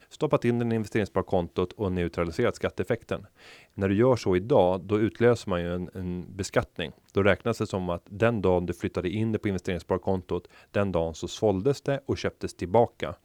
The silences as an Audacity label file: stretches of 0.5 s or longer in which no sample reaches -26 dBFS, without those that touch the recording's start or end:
3.150000	3.790000	silence